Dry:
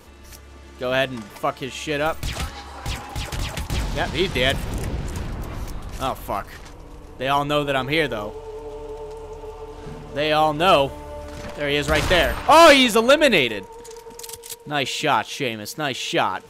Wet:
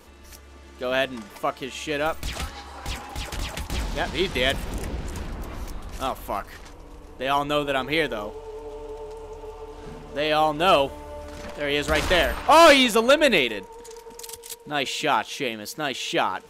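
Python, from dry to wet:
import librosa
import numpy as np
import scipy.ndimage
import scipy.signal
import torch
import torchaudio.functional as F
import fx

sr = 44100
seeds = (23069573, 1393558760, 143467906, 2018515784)

y = fx.peak_eq(x, sr, hz=120.0, db=-11.5, octaves=0.45)
y = y * 10.0 ** (-2.5 / 20.0)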